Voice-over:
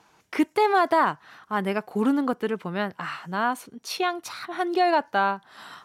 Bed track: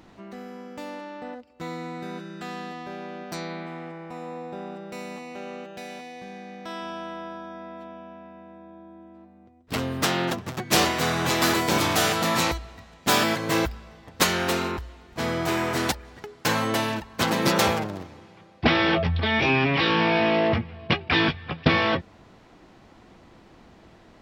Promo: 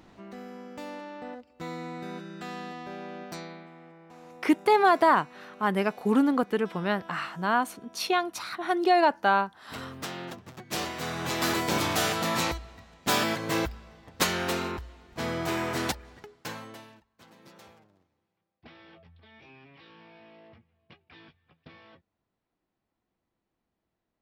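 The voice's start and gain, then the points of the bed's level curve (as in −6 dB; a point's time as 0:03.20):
4.10 s, 0.0 dB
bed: 0:03.24 −3 dB
0:03.71 −13 dB
0:10.67 −13 dB
0:11.58 −4.5 dB
0:16.12 −4.5 dB
0:17.16 −32 dB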